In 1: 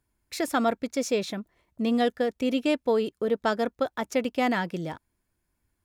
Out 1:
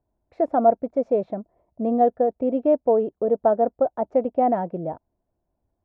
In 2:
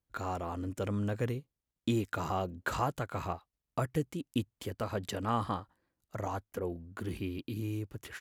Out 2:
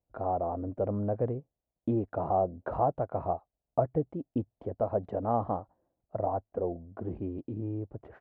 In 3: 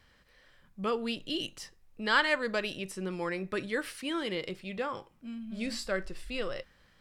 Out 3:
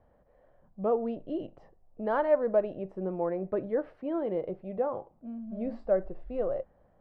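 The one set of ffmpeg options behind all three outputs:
-af "lowpass=f=680:t=q:w=3.5"

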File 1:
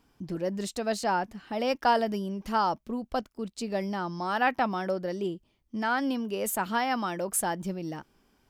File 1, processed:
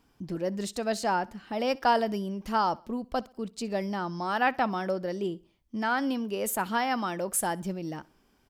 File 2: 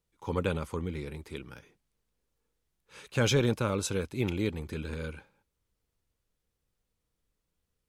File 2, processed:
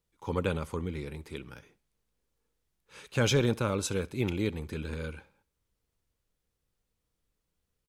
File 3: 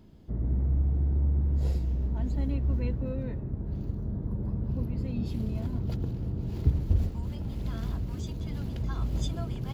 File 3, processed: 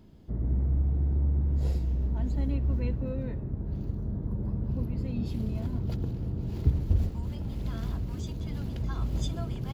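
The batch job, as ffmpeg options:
-af "aecho=1:1:64|128|192:0.0668|0.0267|0.0107"

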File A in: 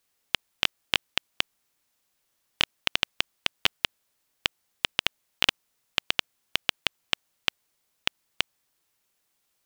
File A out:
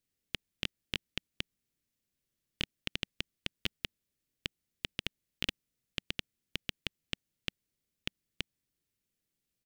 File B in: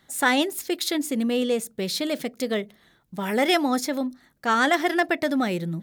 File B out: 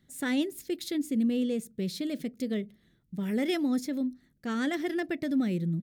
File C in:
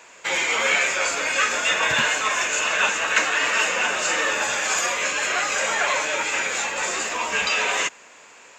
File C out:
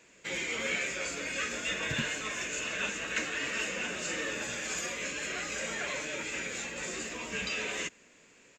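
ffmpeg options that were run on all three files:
-af "firequalizer=gain_entry='entry(190,0);entry(840,-21);entry(1900,-12)':delay=0.05:min_phase=1"

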